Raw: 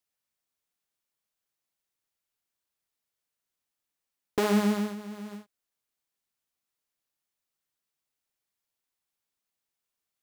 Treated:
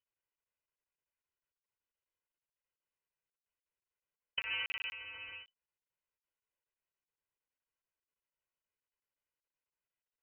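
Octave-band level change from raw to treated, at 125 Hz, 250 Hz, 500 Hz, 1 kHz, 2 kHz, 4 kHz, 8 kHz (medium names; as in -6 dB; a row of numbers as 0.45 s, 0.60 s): -31.5 dB, under -40 dB, -32.0 dB, -19.0 dB, 0.0 dB, +1.0 dB, under -25 dB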